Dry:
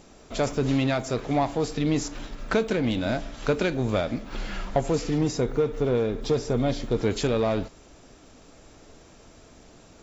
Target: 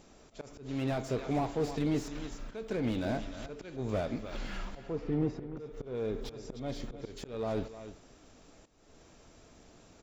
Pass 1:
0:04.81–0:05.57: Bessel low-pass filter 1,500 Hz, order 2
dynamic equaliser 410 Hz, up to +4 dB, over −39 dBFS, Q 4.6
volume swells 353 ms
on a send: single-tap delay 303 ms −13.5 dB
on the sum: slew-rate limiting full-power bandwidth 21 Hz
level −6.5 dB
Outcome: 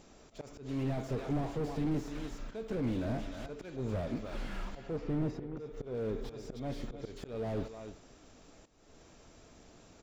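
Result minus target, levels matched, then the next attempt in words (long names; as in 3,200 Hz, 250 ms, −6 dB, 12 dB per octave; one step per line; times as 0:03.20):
slew-rate limiting: distortion +10 dB
0:04.81–0:05.57: Bessel low-pass filter 1,500 Hz, order 2
dynamic equaliser 410 Hz, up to +4 dB, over −39 dBFS, Q 4.6
volume swells 353 ms
on a send: single-tap delay 303 ms −13.5 dB
on the sum: slew-rate limiting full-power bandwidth 57 Hz
level −6.5 dB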